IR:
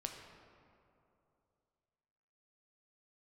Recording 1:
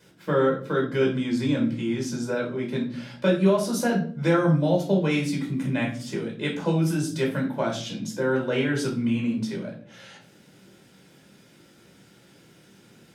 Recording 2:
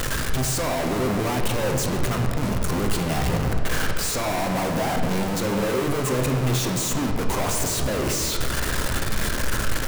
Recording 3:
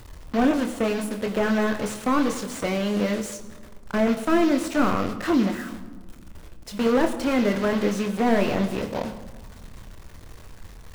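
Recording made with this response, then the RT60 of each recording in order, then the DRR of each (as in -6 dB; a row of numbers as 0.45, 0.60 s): 2; 0.50 s, 2.8 s, not exponential; -2.0, 2.5, 5.0 dB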